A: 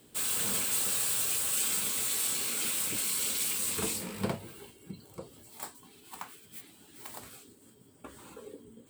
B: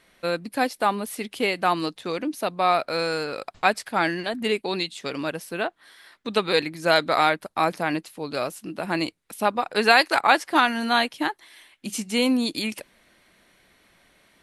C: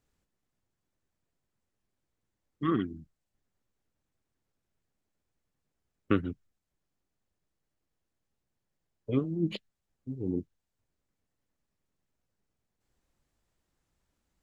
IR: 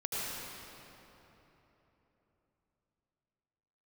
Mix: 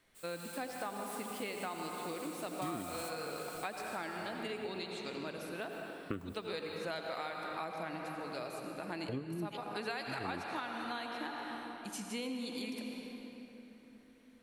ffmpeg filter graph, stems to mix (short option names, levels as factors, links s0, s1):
-filter_complex "[0:a]volume=0.282,asplit=2[s0][s1];[s1]volume=0.237[s2];[1:a]volume=0.158,asplit=2[s3][s4];[s4]volume=0.596[s5];[2:a]volume=0.794,asplit=3[s6][s7][s8];[s7]volume=0.0891[s9];[s8]apad=whole_len=392166[s10];[s0][s10]sidechaingate=range=0.0224:threshold=0.002:ratio=16:detection=peak[s11];[3:a]atrim=start_sample=2205[s12];[s2][s5][s9]amix=inputs=3:normalize=0[s13];[s13][s12]afir=irnorm=-1:irlink=0[s14];[s11][s3][s6][s14]amix=inputs=4:normalize=0,acompressor=threshold=0.0141:ratio=5"